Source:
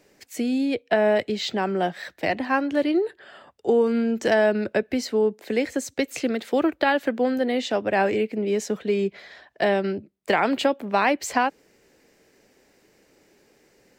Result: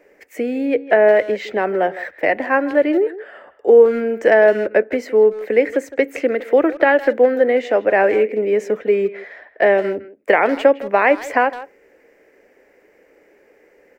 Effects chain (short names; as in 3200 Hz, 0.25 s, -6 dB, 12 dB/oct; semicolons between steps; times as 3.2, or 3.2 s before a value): bell 12000 Hz -4.5 dB 0.36 oct; short-mantissa float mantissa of 6-bit; graphic EQ 125/500/2000/4000/8000 Hz -11/+11/+11/-12/-6 dB; speakerphone echo 0.16 s, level -15 dB; FDN reverb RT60 0.31 s, low-frequency decay 1.4×, high-frequency decay 0.4×, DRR 19 dB